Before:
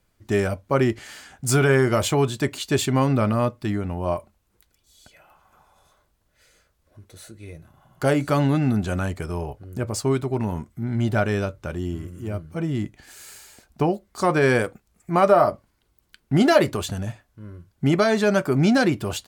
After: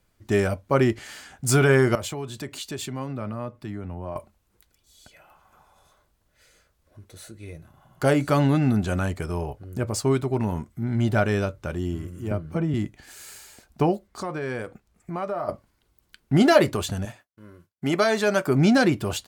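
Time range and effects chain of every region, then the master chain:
1.95–4.16 s: compression 3:1, threshold -32 dBFS + three bands expanded up and down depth 40%
12.31–12.74 s: treble shelf 3.6 kHz -10.5 dB + three bands compressed up and down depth 100%
14.07–15.49 s: short-mantissa float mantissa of 6-bit + treble shelf 5.8 kHz -7.5 dB + compression 2.5:1, threshold -32 dBFS
17.05–18.47 s: high-pass 370 Hz 6 dB/octave + treble shelf 11 kHz +4.5 dB + expander -57 dBFS
whole clip: none

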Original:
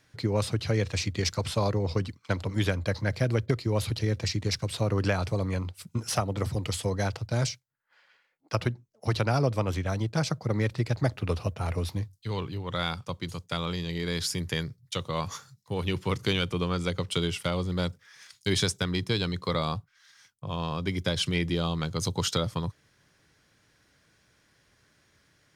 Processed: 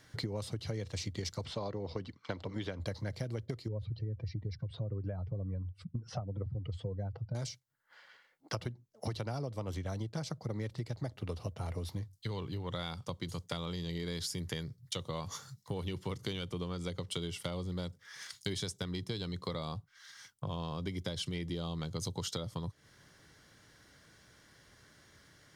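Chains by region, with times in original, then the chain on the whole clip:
1.45–2.80 s: low-pass 4.2 kHz + peaking EQ 91 Hz -7 dB 2 oct
3.68–7.35 s: spectral contrast enhancement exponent 1.7 + tape spacing loss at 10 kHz 31 dB
whole clip: band-stop 2.5 kHz, Q 8; dynamic bell 1.5 kHz, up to -5 dB, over -47 dBFS, Q 1.3; compression 6:1, threshold -40 dBFS; trim +4 dB

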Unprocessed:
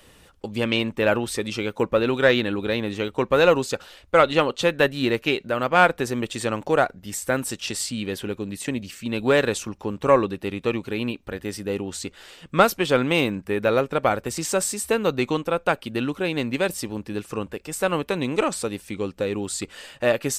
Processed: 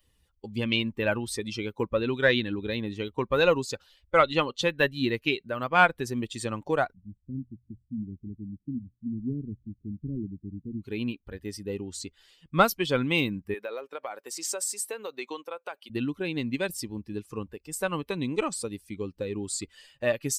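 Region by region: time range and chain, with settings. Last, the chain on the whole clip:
6.93–10.82 s: inverse Chebyshev low-pass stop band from 740 Hz, stop band 50 dB + hum notches 60/120 Hz
13.54–15.90 s: high-pass 440 Hz + compression 4:1, threshold -23 dBFS
whole clip: expander on every frequency bin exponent 1.5; dynamic bell 480 Hz, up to -4 dB, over -30 dBFS, Q 0.75

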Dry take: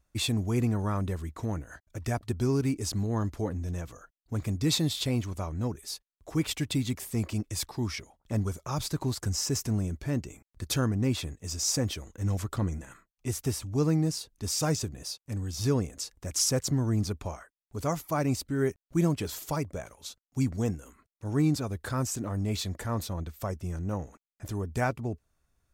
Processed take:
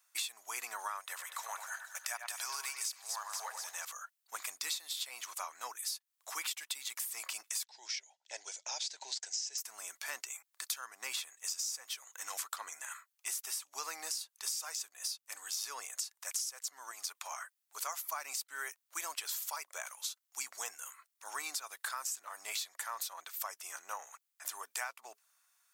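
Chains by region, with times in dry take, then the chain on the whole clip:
1.00–3.85 s: high-pass 540 Hz 24 dB/octave + two-band feedback delay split 2.9 kHz, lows 97 ms, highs 241 ms, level -8 dB
7.64–9.58 s: steep low-pass 7 kHz + static phaser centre 490 Hz, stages 4
16.91–17.31 s: high-pass 480 Hz 6 dB/octave + compression 2:1, threshold -39 dBFS
whole clip: high-pass 940 Hz 24 dB/octave; treble shelf 6.1 kHz +8.5 dB; compression 12:1, threshold -41 dBFS; trim +5.5 dB

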